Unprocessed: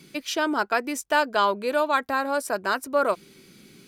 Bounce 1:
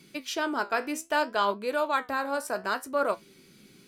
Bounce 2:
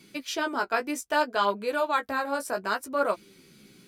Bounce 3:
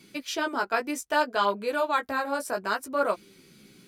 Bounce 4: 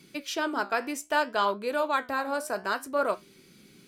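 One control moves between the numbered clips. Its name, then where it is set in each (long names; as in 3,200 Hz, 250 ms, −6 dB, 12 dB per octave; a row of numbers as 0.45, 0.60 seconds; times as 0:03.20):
flanger, regen: +66, +14, −6, −70%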